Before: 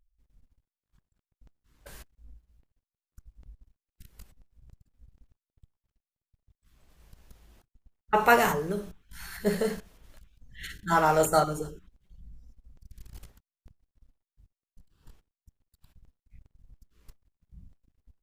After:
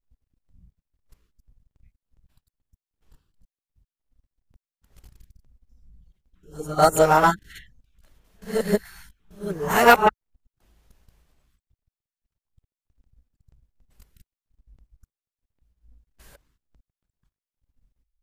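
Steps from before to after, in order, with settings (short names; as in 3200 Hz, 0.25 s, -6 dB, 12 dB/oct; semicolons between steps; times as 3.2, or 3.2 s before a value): whole clip reversed; hard clip -13.5 dBFS, distortion -20 dB; upward expander 1.5:1, over -41 dBFS; gain +8 dB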